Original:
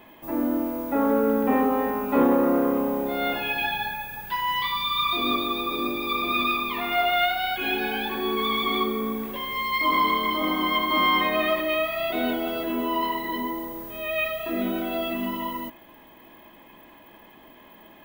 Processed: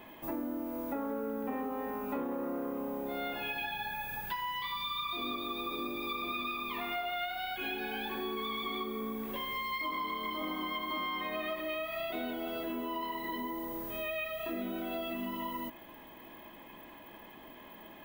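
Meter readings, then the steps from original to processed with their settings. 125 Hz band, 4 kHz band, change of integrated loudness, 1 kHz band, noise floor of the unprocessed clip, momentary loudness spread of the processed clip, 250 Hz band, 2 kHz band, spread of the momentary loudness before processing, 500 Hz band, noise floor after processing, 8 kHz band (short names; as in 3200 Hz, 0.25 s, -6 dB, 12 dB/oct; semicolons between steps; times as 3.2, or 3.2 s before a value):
-11.0 dB, -11.5 dB, -12.0 dB, -12.0 dB, -50 dBFS, 15 LU, -12.5 dB, -11.5 dB, 8 LU, -12.0 dB, -52 dBFS, n/a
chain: compressor 6:1, threshold -33 dBFS, peak gain reduction 16.5 dB; gain -1.5 dB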